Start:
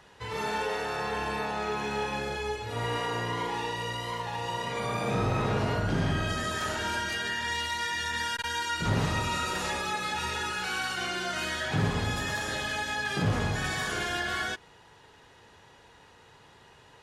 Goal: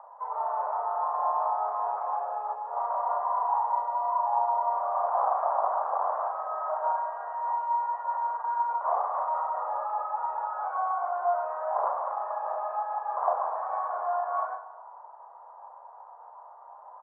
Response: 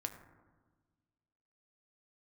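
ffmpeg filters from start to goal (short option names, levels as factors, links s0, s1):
-filter_complex "[0:a]aeval=exprs='0.188*(cos(1*acos(clip(val(0)/0.188,-1,1)))-cos(1*PI/2))+0.0596*(cos(3*acos(clip(val(0)/0.188,-1,1)))-cos(3*PI/2))+0.0335*(cos(7*acos(clip(val(0)/0.188,-1,1)))-cos(7*PI/2))':c=same,aphaser=in_gain=1:out_gain=1:delay=2.6:decay=0.21:speed=1.6:type=sinusoidal,asuperpass=centerf=840:order=8:qfactor=1.5,asplit=2[s0][s1];[s1]adelay=37,volume=0.473[s2];[s0][s2]amix=inputs=2:normalize=0,asplit=2[s3][s4];[1:a]atrim=start_sample=2205[s5];[s4][s5]afir=irnorm=-1:irlink=0,volume=1.78[s6];[s3][s6]amix=inputs=2:normalize=0,volume=1.26"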